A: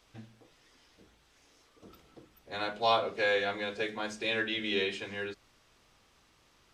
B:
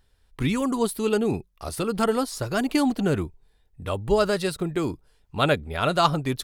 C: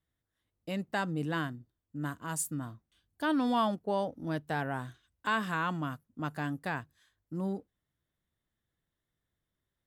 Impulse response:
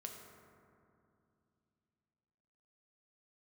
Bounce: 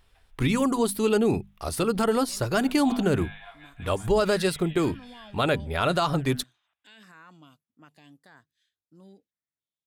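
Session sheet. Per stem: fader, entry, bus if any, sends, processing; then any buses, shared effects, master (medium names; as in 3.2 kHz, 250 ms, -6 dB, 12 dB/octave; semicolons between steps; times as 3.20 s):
-3.0 dB, 0.00 s, send -17 dB, echo send -24 dB, Chebyshev band-pass 660–3600 Hz, order 5; auto duck -12 dB, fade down 0.55 s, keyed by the second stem
+2.0 dB, 0.00 s, no send, no echo send, hum notches 50/100/150/200/250 Hz
-15.0 dB, 1.60 s, no send, no echo send, frequency weighting D; peak limiter -21.5 dBFS, peak gain reduction 9 dB; step-sequenced notch 3.5 Hz 950–3900 Hz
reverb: on, RT60 2.6 s, pre-delay 4 ms
echo: feedback delay 569 ms, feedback 25%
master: peak limiter -13 dBFS, peak gain reduction 10.5 dB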